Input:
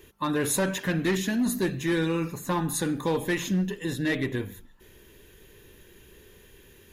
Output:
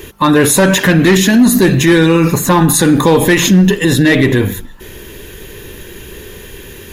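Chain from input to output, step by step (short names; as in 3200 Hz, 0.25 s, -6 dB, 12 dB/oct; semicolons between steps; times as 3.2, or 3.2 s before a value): in parallel at -10 dB: crossover distortion -45.5 dBFS; on the sum: maximiser +22.5 dB; gain -1 dB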